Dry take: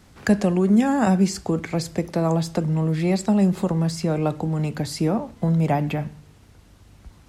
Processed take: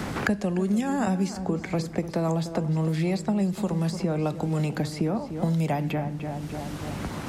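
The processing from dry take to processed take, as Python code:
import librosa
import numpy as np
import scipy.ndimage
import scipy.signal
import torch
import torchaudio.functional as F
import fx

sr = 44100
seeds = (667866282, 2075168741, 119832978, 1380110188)

y = fx.echo_filtered(x, sr, ms=296, feedback_pct=33, hz=2300.0, wet_db=-13.0)
y = fx.band_squash(y, sr, depth_pct=100)
y = y * 10.0 ** (-5.5 / 20.0)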